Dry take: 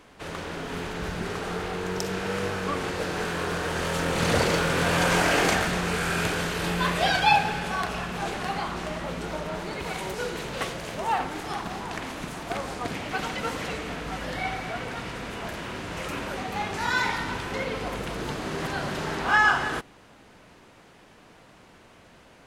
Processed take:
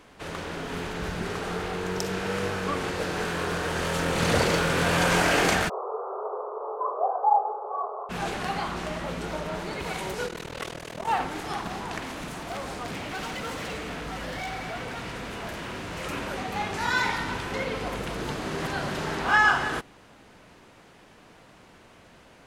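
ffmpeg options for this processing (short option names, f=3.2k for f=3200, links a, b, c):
-filter_complex "[0:a]asplit=3[a][b][c];[a]afade=t=out:st=5.68:d=0.02[d];[b]asuperpass=centerf=690:order=20:qfactor=0.81,afade=t=in:st=5.68:d=0.02,afade=t=out:st=8.09:d=0.02[e];[c]afade=t=in:st=8.09:d=0.02[f];[d][e][f]amix=inputs=3:normalize=0,asplit=3[g][h][i];[g]afade=t=out:st=10.26:d=0.02[j];[h]tremolo=f=40:d=0.947,afade=t=in:st=10.26:d=0.02,afade=t=out:st=11.06:d=0.02[k];[i]afade=t=in:st=11.06:d=0.02[l];[j][k][l]amix=inputs=3:normalize=0,asettb=1/sr,asplit=3[m][n][o];[m]atrim=end=11.984[p];[n]atrim=start=11.98:end=16.03,asetpts=PTS-STARTPTS,afade=t=in:d=0.004:c=qsin,afade=t=out:st=4.046:d=0.004:c=qsin,volume=30.5dB,asoftclip=hard,volume=-30.5dB[q];[o]atrim=start=16.026[r];[p][q]acrossfade=d=0.004:c1=hsin:c2=qsin[s];[s][r]acrossfade=d=0.004:c1=qsin:c2=hsin"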